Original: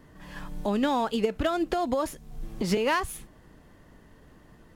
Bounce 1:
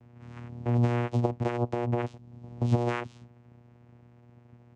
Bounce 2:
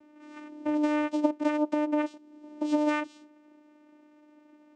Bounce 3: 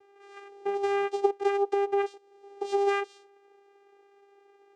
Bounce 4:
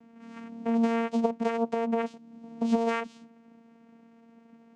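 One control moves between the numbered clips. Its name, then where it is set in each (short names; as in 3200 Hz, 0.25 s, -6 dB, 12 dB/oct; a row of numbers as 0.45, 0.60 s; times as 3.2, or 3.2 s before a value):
vocoder, frequency: 120, 300, 400, 230 Hz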